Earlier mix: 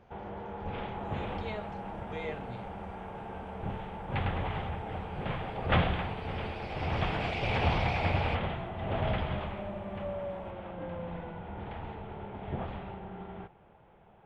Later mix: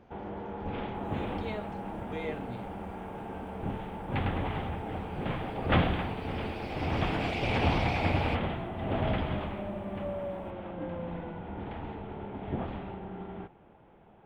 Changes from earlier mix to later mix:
second sound: remove air absorption 55 m; master: add bell 280 Hz +8.5 dB 0.75 oct

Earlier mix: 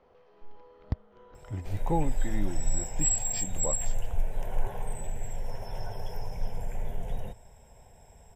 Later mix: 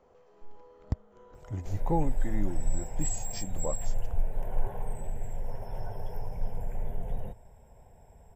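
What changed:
speech: remove air absorption 280 m; master: add bell 4900 Hz -12 dB 2.5 oct

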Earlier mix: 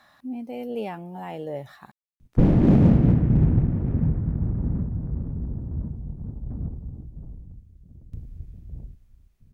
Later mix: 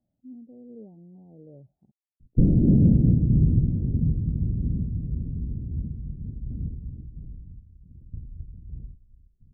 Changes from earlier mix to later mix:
speech -8.0 dB; master: add Gaussian blur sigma 21 samples

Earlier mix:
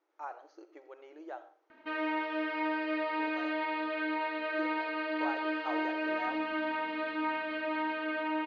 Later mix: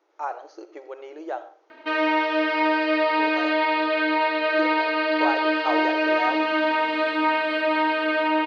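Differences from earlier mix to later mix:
background: remove air absorption 99 m; master: add EQ curve 170 Hz 0 dB, 420 Hz +14 dB, 1700 Hz +10 dB, 5000 Hz +14 dB

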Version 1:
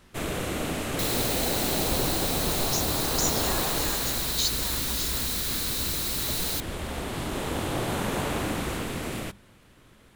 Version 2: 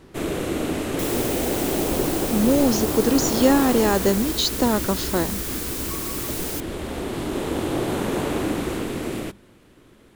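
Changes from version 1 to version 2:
speech: remove differentiator; second sound: add bell 4000 Hz -11.5 dB 0.33 oct; master: add bell 340 Hz +9 dB 1.2 oct

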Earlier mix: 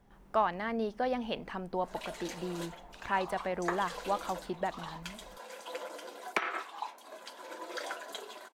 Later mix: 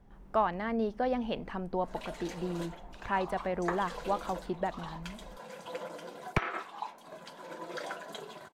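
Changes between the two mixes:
background: remove steep high-pass 240 Hz 36 dB/oct; master: add tilt -1.5 dB/oct

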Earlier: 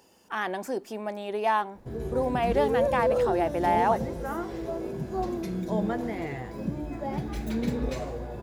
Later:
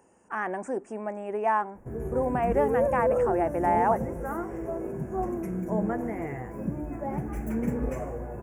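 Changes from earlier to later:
speech: add brick-wall FIR low-pass 9500 Hz; master: add Butterworth band-stop 4000 Hz, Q 0.75

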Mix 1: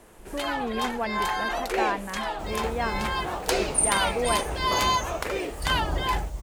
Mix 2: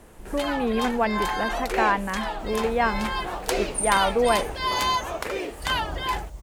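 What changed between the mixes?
speech +6.5 dB; second sound -5.0 dB

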